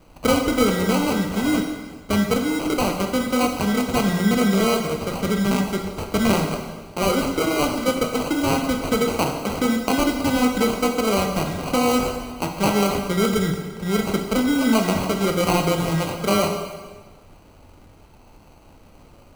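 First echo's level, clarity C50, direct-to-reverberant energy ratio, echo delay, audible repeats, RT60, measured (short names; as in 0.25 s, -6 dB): none, 5.5 dB, 2.5 dB, none, none, 1.4 s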